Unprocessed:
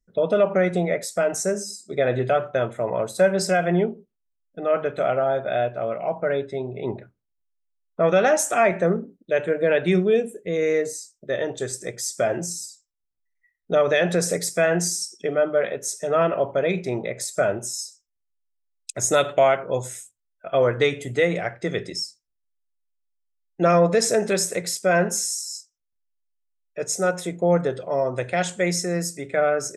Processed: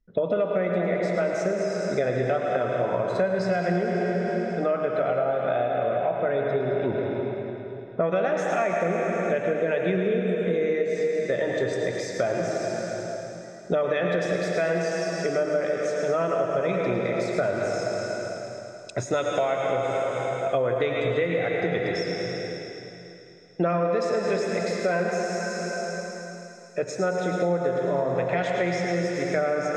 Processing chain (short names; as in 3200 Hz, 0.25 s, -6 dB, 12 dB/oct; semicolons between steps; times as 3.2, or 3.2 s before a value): thinning echo 0.108 s, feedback 82%, high-pass 1000 Hz, level -9.5 dB; on a send at -1.5 dB: reverb RT60 3.0 s, pre-delay 83 ms; on the sum: compressor 6:1, threshold -26 dBFS, peak gain reduction 13.5 dB; air absorption 200 m; gain +5 dB